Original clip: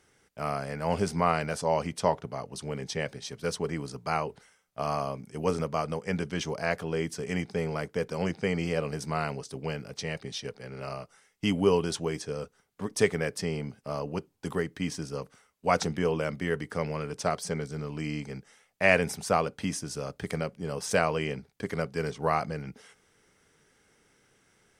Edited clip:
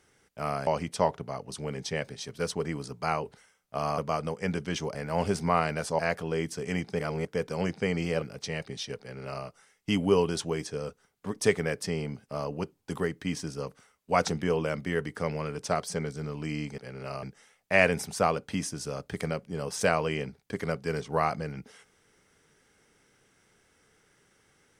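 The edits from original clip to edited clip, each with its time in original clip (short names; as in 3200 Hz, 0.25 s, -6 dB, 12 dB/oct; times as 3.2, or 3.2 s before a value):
0.67–1.71 move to 6.6
5.02–5.63 cut
7.6–7.86 reverse
8.83–9.77 cut
10.55–11 copy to 18.33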